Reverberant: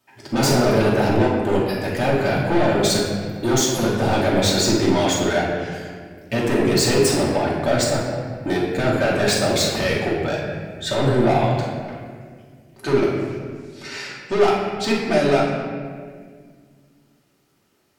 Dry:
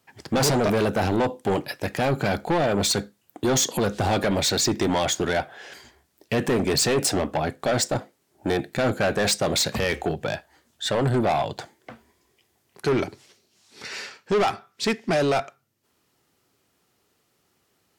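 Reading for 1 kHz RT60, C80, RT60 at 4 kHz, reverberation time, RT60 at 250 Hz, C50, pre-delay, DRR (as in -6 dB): 1.6 s, 3.0 dB, 1.2 s, 1.8 s, 2.8 s, 0.5 dB, 3 ms, -6.5 dB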